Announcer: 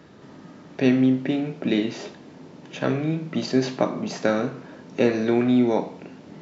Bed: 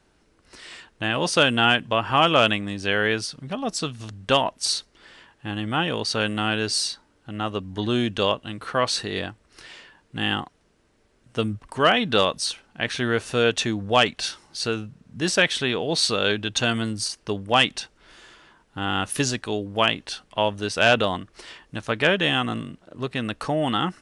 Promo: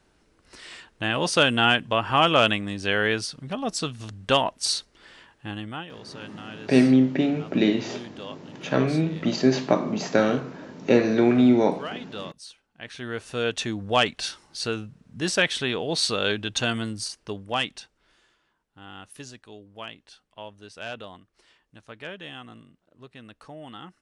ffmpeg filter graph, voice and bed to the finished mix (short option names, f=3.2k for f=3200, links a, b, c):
-filter_complex "[0:a]adelay=5900,volume=1.5dB[a];[1:a]volume=13.5dB,afade=t=out:st=5.33:d=0.54:silence=0.158489,afade=t=in:st=12.71:d=1.24:silence=0.188365,afade=t=out:st=16.6:d=1.78:silence=0.16788[b];[a][b]amix=inputs=2:normalize=0"